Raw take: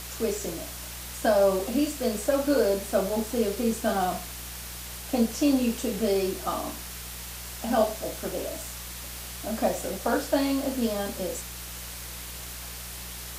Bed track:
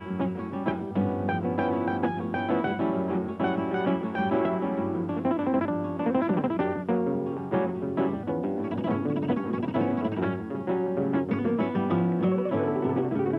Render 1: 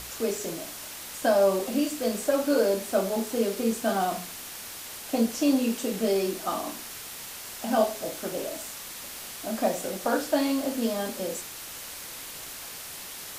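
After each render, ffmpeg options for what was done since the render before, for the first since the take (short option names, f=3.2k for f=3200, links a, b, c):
-af "bandreject=f=60:t=h:w=4,bandreject=f=120:t=h:w=4,bandreject=f=180:t=h:w=4,bandreject=f=240:t=h:w=4,bandreject=f=300:t=h:w=4,bandreject=f=360:t=h:w=4,bandreject=f=420:t=h:w=4"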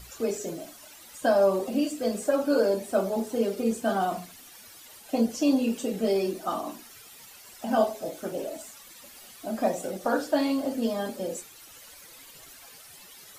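-af "afftdn=nr=13:nf=-40"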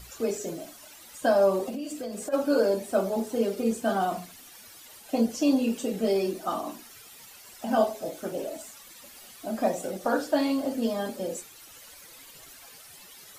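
-filter_complex "[0:a]asplit=3[a][b][c];[a]afade=t=out:st=1.69:d=0.02[d];[b]acompressor=threshold=-31dB:ratio=6:attack=3.2:release=140:knee=1:detection=peak,afade=t=in:st=1.69:d=0.02,afade=t=out:st=2.32:d=0.02[e];[c]afade=t=in:st=2.32:d=0.02[f];[d][e][f]amix=inputs=3:normalize=0"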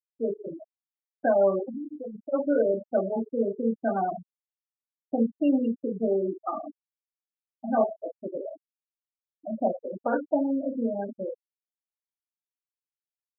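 -af "equalizer=f=6.6k:t=o:w=0.82:g=-6.5,afftfilt=real='re*gte(hypot(re,im),0.1)':imag='im*gte(hypot(re,im),0.1)':win_size=1024:overlap=0.75"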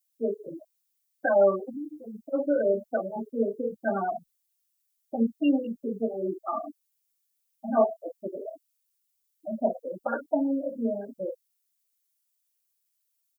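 -filter_complex "[0:a]crystalizer=i=9:c=0,asplit=2[a][b];[b]adelay=3.4,afreqshift=1.6[c];[a][c]amix=inputs=2:normalize=1"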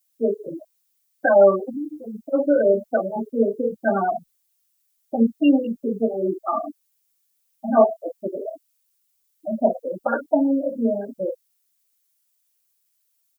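-af "volume=7dB"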